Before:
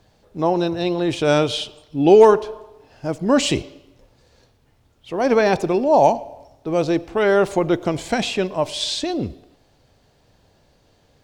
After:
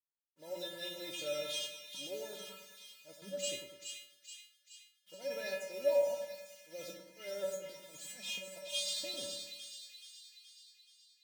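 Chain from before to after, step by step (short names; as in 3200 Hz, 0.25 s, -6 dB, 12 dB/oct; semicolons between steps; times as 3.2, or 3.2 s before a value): high shelf 2100 Hz +9 dB; limiter -11 dBFS, peak gain reduction 11 dB; transient shaper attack +3 dB, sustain -7 dB; HPF 130 Hz 12 dB/oct; fixed phaser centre 450 Hz, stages 4; requantised 6-bit, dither none; auto swell 0.163 s; resonator 190 Hz, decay 0.35 s, harmonics odd, mix 100%; split-band echo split 1900 Hz, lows 0.101 s, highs 0.425 s, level -6 dB; dynamic EQ 4700 Hz, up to -5 dB, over -59 dBFS, Q 3.4; gain +1.5 dB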